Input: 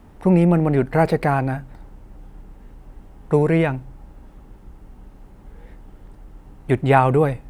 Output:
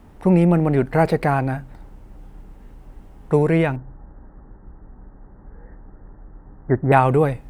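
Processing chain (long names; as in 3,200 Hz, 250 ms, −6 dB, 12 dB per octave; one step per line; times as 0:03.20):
0:03.76–0:06.92: Butterworth low-pass 1,900 Hz 96 dB per octave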